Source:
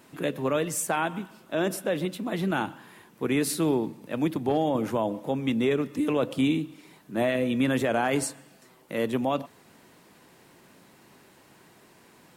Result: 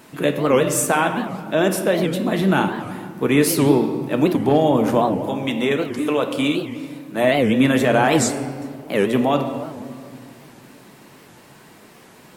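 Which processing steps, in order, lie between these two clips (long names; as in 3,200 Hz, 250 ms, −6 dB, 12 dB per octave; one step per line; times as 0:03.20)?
0:05.21–0:07.24: low-shelf EQ 350 Hz −10.5 dB
convolution reverb RT60 2.2 s, pre-delay 5 ms, DRR 5 dB
wow of a warped record 78 rpm, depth 250 cents
level +8 dB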